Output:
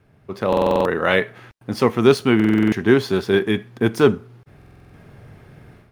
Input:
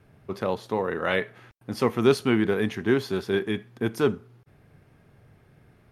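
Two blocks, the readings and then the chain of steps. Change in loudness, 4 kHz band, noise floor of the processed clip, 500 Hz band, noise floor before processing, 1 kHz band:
+7.5 dB, +6.5 dB, −54 dBFS, +7.0 dB, −59 dBFS, +7.5 dB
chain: running median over 3 samples
automatic gain control gain up to 12 dB
buffer that repeats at 0:00.48/0:02.35/0:04.57, samples 2,048, times 7

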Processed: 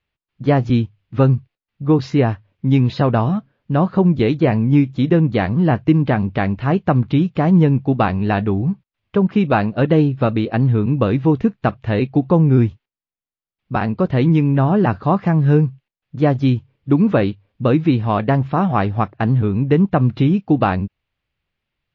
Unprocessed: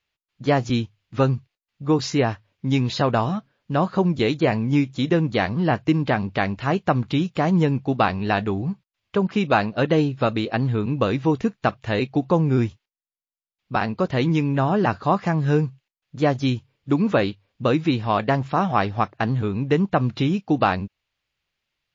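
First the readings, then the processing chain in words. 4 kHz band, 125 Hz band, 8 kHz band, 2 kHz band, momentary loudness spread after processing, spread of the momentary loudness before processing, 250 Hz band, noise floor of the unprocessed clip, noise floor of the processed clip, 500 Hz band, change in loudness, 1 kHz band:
−3.0 dB, +7.5 dB, can't be measured, 0.0 dB, 7 LU, 6 LU, +6.0 dB, below −85 dBFS, below −85 dBFS, +3.5 dB, +5.0 dB, +1.5 dB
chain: low-pass filter 3,400 Hz 12 dB per octave
low-shelf EQ 380 Hz +8.5 dB

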